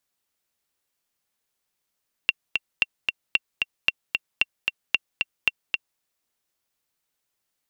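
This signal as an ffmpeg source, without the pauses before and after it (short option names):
-f lavfi -i "aevalsrc='pow(10,(-5-4*gte(mod(t,2*60/226),60/226))/20)*sin(2*PI*2740*mod(t,60/226))*exp(-6.91*mod(t,60/226)/0.03)':d=3.71:s=44100"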